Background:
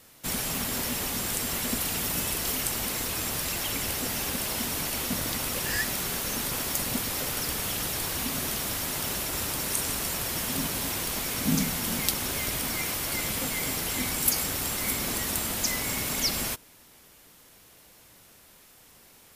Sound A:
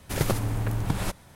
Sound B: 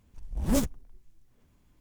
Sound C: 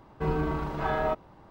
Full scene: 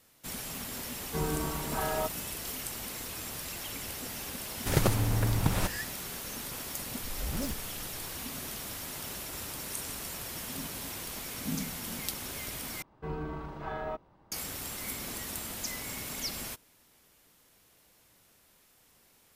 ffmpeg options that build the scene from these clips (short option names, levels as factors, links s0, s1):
-filter_complex "[3:a]asplit=2[s0][s1];[0:a]volume=0.355[s2];[2:a]acompressor=threshold=0.0316:ratio=6:attack=3.2:release=140:knee=1:detection=peak[s3];[s2]asplit=2[s4][s5];[s4]atrim=end=12.824[s6];[s1]atrim=end=1.5,asetpts=PTS-STARTPTS,volume=0.355[s7];[s5]atrim=start=14.316[s8];[s0]atrim=end=1.5,asetpts=PTS-STARTPTS,volume=0.596,afade=t=in:d=0.004:c=hsin,afade=t=out:st=1.496:d=0.004:c=hsin,adelay=930[s9];[1:a]atrim=end=1.35,asetpts=PTS-STARTPTS,volume=0.944,afade=t=in:d=0.004:c=hsin,afade=t=out:st=1.346:d=0.004:c=hsin,adelay=4560[s10];[s3]atrim=end=1.8,asetpts=PTS-STARTPTS,volume=0.944,afade=t=in:d=0.004:c=hsin,afade=t=out:st=1.796:d=0.004:c=hsin,adelay=6870[s11];[s6][s7]acrossfade=d=0.004:c1=hsin:c2=hsin[s12];[s12][s8]acrossfade=d=0.004:c1=hsin:c2=hsin[s13];[s13][s9][s10][s11]amix=inputs=4:normalize=0"